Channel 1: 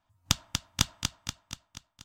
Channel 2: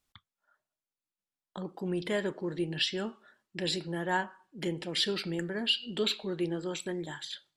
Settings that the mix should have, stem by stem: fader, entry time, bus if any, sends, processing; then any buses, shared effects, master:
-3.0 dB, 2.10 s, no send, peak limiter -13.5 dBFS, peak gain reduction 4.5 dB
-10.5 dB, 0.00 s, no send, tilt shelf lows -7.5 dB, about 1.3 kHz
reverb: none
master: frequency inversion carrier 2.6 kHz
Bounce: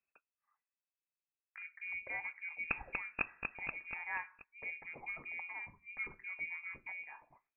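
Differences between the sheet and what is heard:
stem 1: entry 2.10 s -> 2.40 s; stem 2: missing tilt shelf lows -7.5 dB, about 1.3 kHz

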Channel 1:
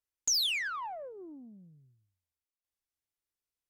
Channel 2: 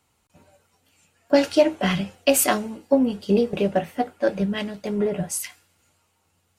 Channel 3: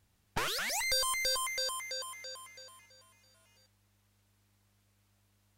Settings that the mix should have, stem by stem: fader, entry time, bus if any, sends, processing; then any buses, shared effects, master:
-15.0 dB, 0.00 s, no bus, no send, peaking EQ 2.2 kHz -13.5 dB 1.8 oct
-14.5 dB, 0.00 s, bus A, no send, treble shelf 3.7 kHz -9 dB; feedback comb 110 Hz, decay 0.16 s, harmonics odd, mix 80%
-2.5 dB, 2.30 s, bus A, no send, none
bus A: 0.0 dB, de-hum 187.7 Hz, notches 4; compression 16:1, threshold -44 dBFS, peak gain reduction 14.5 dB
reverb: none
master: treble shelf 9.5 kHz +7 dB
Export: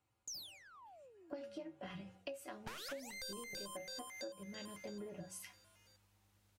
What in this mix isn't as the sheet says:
stem 2 -14.5 dB -> -5.0 dB; master: missing treble shelf 9.5 kHz +7 dB

